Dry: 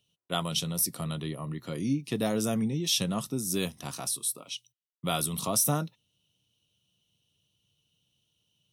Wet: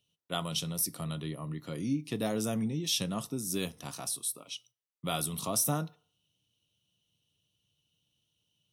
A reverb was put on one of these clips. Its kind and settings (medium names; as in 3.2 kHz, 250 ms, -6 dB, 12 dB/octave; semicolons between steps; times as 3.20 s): FDN reverb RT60 0.46 s, low-frequency decay 0.75×, high-frequency decay 0.6×, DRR 16 dB; trim -3.5 dB